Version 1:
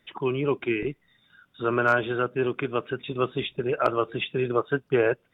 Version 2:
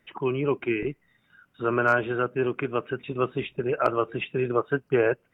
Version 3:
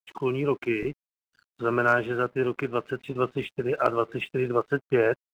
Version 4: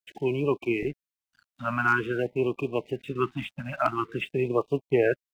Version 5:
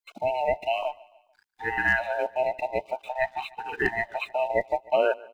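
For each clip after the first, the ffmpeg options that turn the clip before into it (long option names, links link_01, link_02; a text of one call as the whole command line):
ffmpeg -i in.wav -af "equalizer=frequency=3500:width_type=o:width=0.21:gain=-14" out.wav
ffmpeg -i in.wav -af "aeval=exprs='sgn(val(0))*max(abs(val(0))-0.00251,0)':channel_layout=same" out.wav
ffmpeg -i in.wav -af "afftfilt=real='re*(1-between(b*sr/1024,370*pow(1700/370,0.5+0.5*sin(2*PI*0.48*pts/sr))/1.41,370*pow(1700/370,0.5+0.5*sin(2*PI*0.48*pts/sr))*1.41))':imag='im*(1-between(b*sr/1024,370*pow(1700/370,0.5+0.5*sin(2*PI*0.48*pts/sr))/1.41,370*pow(1700/370,0.5+0.5*sin(2*PI*0.48*pts/sr))*1.41))':win_size=1024:overlap=0.75" out.wav
ffmpeg -i in.wav -af "afftfilt=real='real(if(between(b,1,1008),(2*floor((b-1)/48)+1)*48-b,b),0)':imag='imag(if(between(b,1,1008),(2*floor((b-1)/48)+1)*48-b,b),0)*if(between(b,1,1008),-1,1)':win_size=2048:overlap=0.75,aecho=1:1:147|294|441:0.0794|0.035|0.0154" out.wav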